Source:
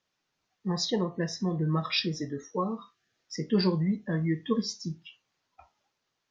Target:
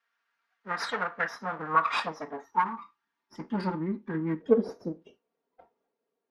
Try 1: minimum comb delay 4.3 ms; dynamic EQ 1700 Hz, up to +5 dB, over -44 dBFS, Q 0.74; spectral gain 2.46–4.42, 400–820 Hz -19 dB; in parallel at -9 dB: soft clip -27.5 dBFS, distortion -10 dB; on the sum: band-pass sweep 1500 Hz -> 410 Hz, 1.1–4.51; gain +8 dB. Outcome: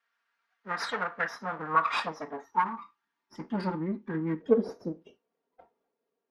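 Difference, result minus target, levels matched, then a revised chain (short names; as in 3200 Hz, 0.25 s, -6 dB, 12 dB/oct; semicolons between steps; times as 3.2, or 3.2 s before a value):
soft clip: distortion +12 dB
minimum comb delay 4.3 ms; dynamic EQ 1700 Hz, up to +5 dB, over -44 dBFS, Q 0.74; spectral gain 2.46–4.42, 400–820 Hz -19 dB; in parallel at -9 dB: soft clip -17.5 dBFS, distortion -22 dB; on the sum: band-pass sweep 1500 Hz -> 410 Hz, 1.1–4.51; gain +8 dB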